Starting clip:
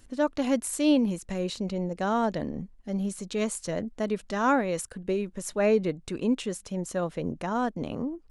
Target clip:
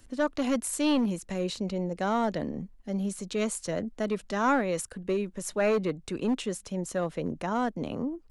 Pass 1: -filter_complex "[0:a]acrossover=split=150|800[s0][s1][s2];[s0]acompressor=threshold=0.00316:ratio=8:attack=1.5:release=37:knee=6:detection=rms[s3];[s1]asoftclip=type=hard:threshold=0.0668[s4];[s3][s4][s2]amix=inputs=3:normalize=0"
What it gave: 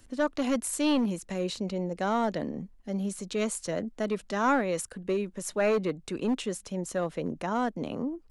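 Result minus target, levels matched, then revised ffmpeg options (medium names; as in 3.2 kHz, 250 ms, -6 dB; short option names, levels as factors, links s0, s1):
compression: peak gain reduction +7.5 dB
-filter_complex "[0:a]acrossover=split=150|800[s0][s1][s2];[s0]acompressor=threshold=0.00841:ratio=8:attack=1.5:release=37:knee=6:detection=rms[s3];[s1]asoftclip=type=hard:threshold=0.0668[s4];[s3][s4][s2]amix=inputs=3:normalize=0"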